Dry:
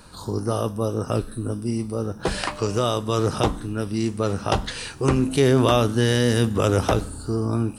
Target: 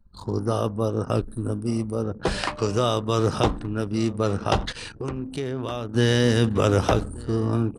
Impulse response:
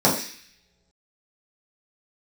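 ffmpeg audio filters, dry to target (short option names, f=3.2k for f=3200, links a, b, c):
-filter_complex "[0:a]asettb=1/sr,asplit=3[a][b][c];[a]atrim=end=1.244[d];[b]atrim=start=1.24:end=2.04,asetpts=PTS-STARTPTS,afade=t=in:d=0.004:c=qsin,afade=t=out:st=0.796:d=0.004:c=qsin,highshelf=f=11k:g=9[e];[c]atrim=start=2.036[f];[d][e]acrossfade=d=0.004:c1=hsin:c2=qsin[g];[g][f]acrossfade=d=0.004:c1=qsin:c2=hsin,aecho=1:1:1176|2352:0.0891|0.0258,asplit=3[h][i][j];[h]afade=t=out:st=4.71:d=0.02[k];[i]acompressor=threshold=-32dB:ratio=2.5,afade=t=in:st=4.71:d=0.02,afade=t=out:st=5.93:d=0.02[l];[j]afade=t=in:st=5.93:d=0.02[m];[k][l][m]amix=inputs=3:normalize=0,anlmdn=2.51,acrossover=split=8000[n][o];[o]acompressor=threshold=-50dB:ratio=4:attack=1:release=60[p];[n][p]amix=inputs=2:normalize=0"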